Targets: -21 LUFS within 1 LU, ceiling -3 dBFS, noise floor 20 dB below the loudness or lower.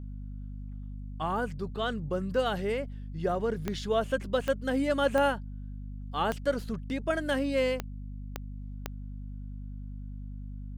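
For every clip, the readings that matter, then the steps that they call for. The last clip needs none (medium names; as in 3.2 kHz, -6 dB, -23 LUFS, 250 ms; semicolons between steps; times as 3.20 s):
clicks found 7; hum 50 Hz; highest harmonic 250 Hz; hum level -37 dBFS; loudness -30.5 LUFS; peak level -12.5 dBFS; loudness target -21.0 LUFS
-> de-click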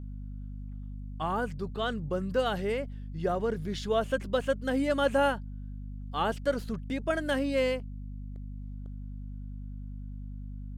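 clicks found 0; hum 50 Hz; highest harmonic 250 Hz; hum level -37 dBFS
-> hum notches 50/100/150/200/250 Hz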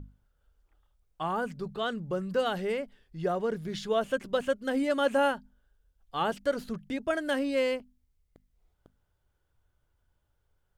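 hum not found; loudness -31.0 LUFS; peak level -14.0 dBFS; loudness target -21.0 LUFS
-> trim +10 dB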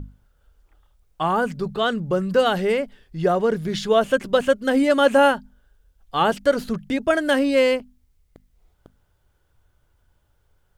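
loudness -21.0 LUFS; peak level -4.0 dBFS; noise floor -65 dBFS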